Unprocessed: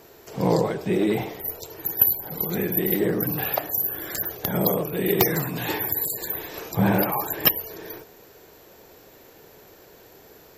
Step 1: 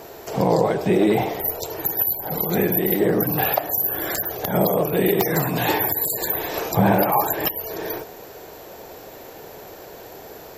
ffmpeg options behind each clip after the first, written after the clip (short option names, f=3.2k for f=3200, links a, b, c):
-filter_complex "[0:a]asplit=2[a][b];[b]acompressor=threshold=-31dB:ratio=6,volume=-0.5dB[c];[a][c]amix=inputs=2:normalize=0,alimiter=limit=-11.5dB:level=0:latency=1:release=173,equalizer=f=710:t=o:w=0.98:g=6.5,volume=2dB"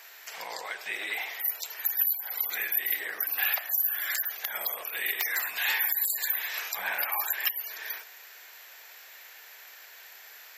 -af "highpass=f=1.9k:t=q:w=1.9,volume=-4.5dB"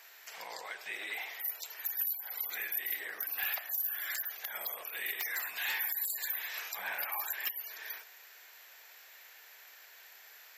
-af "asoftclip=type=tanh:threshold=-19dB,volume=-6dB"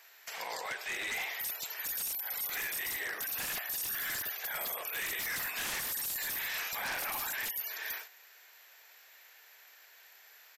-af "agate=range=-8dB:threshold=-51dB:ratio=16:detection=peak,aeval=exprs='0.0158*(abs(mod(val(0)/0.0158+3,4)-2)-1)':c=same,aresample=32000,aresample=44100,volume=5.5dB"